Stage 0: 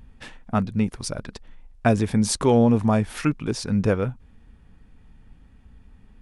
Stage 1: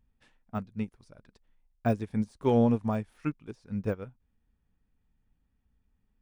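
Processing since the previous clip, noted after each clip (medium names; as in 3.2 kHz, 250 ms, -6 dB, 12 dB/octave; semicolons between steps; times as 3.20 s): de-esser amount 95%; upward expansion 2.5:1, over -27 dBFS; trim -4.5 dB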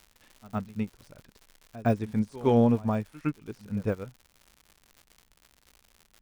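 crackle 140 per s -43 dBFS; pre-echo 112 ms -19 dB; trim +2 dB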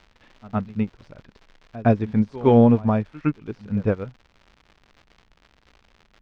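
distance through air 200 m; trim +7.5 dB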